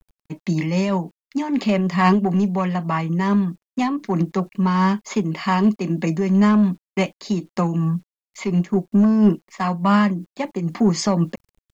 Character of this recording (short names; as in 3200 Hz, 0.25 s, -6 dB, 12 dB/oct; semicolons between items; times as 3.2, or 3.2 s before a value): a quantiser's noise floor 10-bit, dither none; noise-modulated level